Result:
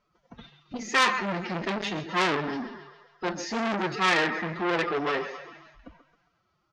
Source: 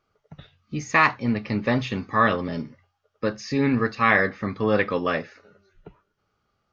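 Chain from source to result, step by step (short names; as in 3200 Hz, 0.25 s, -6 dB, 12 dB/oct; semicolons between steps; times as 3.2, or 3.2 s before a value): bell 160 Hz -6 dB 0.28 oct; transient shaper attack 0 dB, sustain +4 dB; thinning echo 0.135 s, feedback 55%, high-pass 380 Hz, level -11 dB; flange 1.9 Hz, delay 2.8 ms, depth 9.7 ms, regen +79%; formant-preserving pitch shift +8.5 st; downsampling 16000 Hz; core saturation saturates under 3300 Hz; gain +4.5 dB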